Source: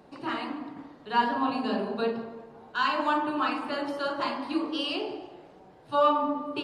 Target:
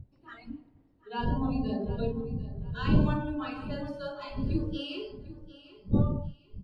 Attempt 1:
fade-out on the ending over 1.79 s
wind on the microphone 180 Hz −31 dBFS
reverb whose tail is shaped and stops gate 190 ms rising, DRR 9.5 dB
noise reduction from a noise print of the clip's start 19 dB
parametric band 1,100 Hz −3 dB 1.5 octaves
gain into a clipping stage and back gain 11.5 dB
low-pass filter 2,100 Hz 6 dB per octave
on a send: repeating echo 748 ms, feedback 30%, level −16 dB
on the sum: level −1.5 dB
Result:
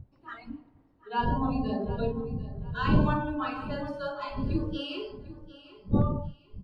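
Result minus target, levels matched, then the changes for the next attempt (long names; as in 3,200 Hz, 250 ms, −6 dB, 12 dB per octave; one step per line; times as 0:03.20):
1,000 Hz band +5.5 dB
change: parametric band 1,100 Hz −10.5 dB 1.5 octaves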